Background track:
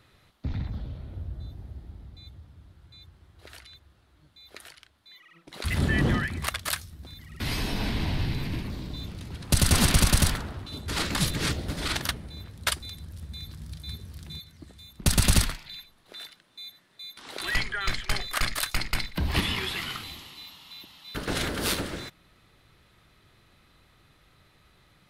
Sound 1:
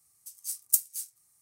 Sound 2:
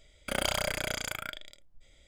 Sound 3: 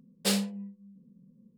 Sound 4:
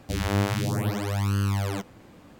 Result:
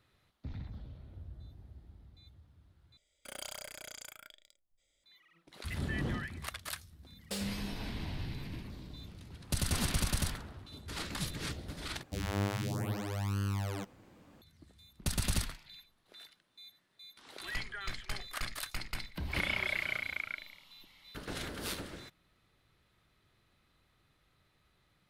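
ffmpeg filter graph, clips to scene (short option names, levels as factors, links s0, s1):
-filter_complex "[2:a]asplit=2[s0][s1];[0:a]volume=0.266[s2];[s0]bass=f=250:g=-7,treble=f=4000:g=8[s3];[3:a]acompressor=threshold=0.0316:ratio=6:attack=3.2:release=140:knee=1:detection=peak[s4];[s1]lowpass=f=2200:t=q:w=9.7[s5];[s2]asplit=3[s6][s7][s8];[s6]atrim=end=2.974[s9];[s3]atrim=end=2.07,asetpts=PTS-STARTPTS,volume=0.15[s10];[s7]atrim=start=5.036:end=12.034[s11];[4:a]atrim=end=2.39,asetpts=PTS-STARTPTS,volume=0.355[s12];[s8]atrim=start=14.416[s13];[s4]atrim=end=1.57,asetpts=PTS-STARTPTS,volume=0.631,afade=t=in:d=0.004:c=hsin,afade=t=out:st=1.566:d=0.004:c=hsin,adelay=311346S[s14];[s5]atrim=end=2.07,asetpts=PTS-STARTPTS,volume=0.224,afade=t=in:d=0.004:c=hsin,afade=t=out:st=2.066:d=0.004:c=hsin,adelay=19050[s15];[s9][s10]acrossfade=d=0.004:c1=hsin:c2=hsin[s16];[s16][s11]acrossfade=d=0.004:c1=hsin:c2=hsin[s17];[s17][s12]acrossfade=d=0.004:c1=hsin:c2=hsin[s18];[s18][s13]acrossfade=d=0.004:c1=hsin:c2=hsin[s19];[s19][s14][s15]amix=inputs=3:normalize=0"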